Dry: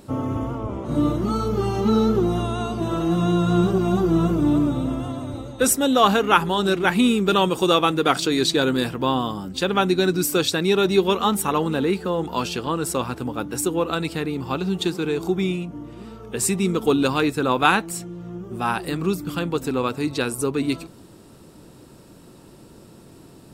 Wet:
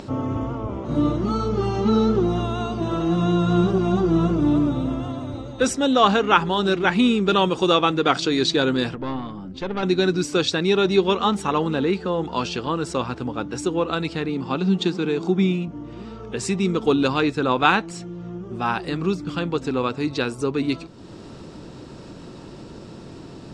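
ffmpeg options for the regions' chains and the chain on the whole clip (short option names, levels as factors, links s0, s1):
-filter_complex "[0:a]asettb=1/sr,asplit=3[s0][s1][s2];[s0]atrim=end=8.954[s3];[s1]atrim=start=8.95:end=9.83,asetpts=PTS-STARTPTS,afade=t=in:d=0.004:c=qsin,afade=t=out:st=0.876:d=0.004:c=qsin,lowpass=f=1400:p=1,equalizer=f=880:w=1.3:g=-3,aeval=exprs='(tanh(8.91*val(0)+0.65)-tanh(0.65))/8.91':c=same[s4];[s2]atrim=start=9.826[s5];[s3][s4]acrossfade=d=0.004:c1=hsin:c2=qsin[s6];[s6][s5]acrossfade=d=0.004:c1=qsin:c2=hsin,asettb=1/sr,asplit=3[s7][s8][s9];[s7]atrim=end=14.294[s10];[s8]atrim=start=14.29:end=15.68,asetpts=PTS-STARTPTS,afade=t=in:d=0.004:c=qsin,afade=t=out:st=1.386:d=0.004:c=qsin,highpass=130,equalizer=f=210:t=o:w=0.56:g=7.5[s11];[s9]atrim=start=15.676[s12];[s10][s11]acrossfade=d=0.004:c1=hsin:c2=qsin[s13];[s13][s12]acrossfade=d=0.004:c1=qsin:c2=hsin,lowpass=f=6400:w=0.5412,lowpass=f=6400:w=1.3066,acompressor=mode=upward:threshold=0.0316:ratio=2.5"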